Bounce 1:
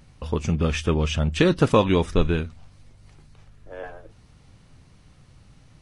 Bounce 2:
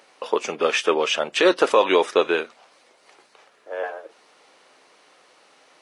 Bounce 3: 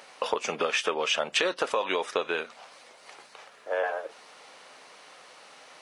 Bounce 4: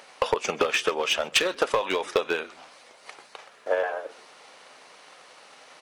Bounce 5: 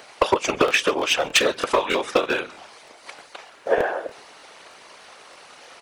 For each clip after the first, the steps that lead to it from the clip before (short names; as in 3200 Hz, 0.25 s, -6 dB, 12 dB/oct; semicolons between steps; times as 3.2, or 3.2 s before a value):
HPF 420 Hz 24 dB/oct; high shelf 4700 Hz -6.5 dB; maximiser +13.5 dB; gain -4.5 dB
compressor 8:1, threshold -27 dBFS, peak gain reduction 15.5 dB; bell 340 Hz -7 dB 0.75 oct; gain +5 dB
hard clip -20 dBFS, distortion -15 dB; frequency-shifting echo 0.131 s, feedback 34%, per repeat -84 Hz, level -23 dB; transient shaper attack +8 dB, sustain +1 dB
whisperiser; crackling interface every 0.31 s, samples 1024, repeat, from 0.66; gain +4.5 dB